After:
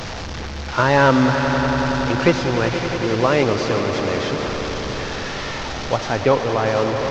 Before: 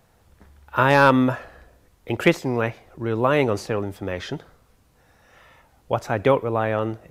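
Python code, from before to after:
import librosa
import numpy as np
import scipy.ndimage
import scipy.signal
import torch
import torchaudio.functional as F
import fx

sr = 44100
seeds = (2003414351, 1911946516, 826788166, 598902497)

y = fx.delta_mod(x, sr, bps=32000, step_db=-25.0)
y = fx.lowpass(y, sr, hz=3500.0, slope=12, at=(6.2, 6.66))
y = fx.echo_swell(y, sr, ms=94, loudest=5, wet_db=-12)
y = y * 10.0 ** (2.0 / 20.0)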